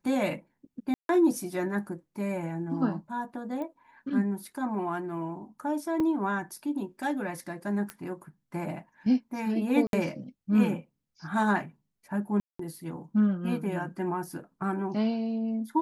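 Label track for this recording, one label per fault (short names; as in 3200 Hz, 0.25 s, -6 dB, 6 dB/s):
0.940000	1.090000	gap 0.152 s
3.620000	3.620000	pop -26 dBFS
6.000000	6.000000	gap 2.1 ms
7.900000	7.900000	pop -21 dBFS
9.870000	9.930000	gap 62 ms
12.400000	12.590000	gap 0.194 s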